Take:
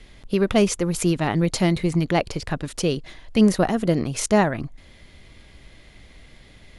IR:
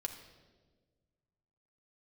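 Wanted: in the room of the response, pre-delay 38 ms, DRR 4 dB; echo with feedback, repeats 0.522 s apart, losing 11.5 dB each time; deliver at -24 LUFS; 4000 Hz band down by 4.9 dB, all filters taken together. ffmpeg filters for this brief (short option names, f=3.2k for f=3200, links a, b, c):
-filter_complex "[0:a]equalizer=f=4k:t=o:g=-7,aecho=1:1:522|1044|1566:0.266|0.0718|0.0194,asplit=2[a][b];[1:a]atrim=start_sample=2205,adelay=38[c];[b][c]afir=irnorm=-1:irlink=0,volume=-3dB[d];[a][d]amix=inputs=2:normalize=0,volume=-3.5dB"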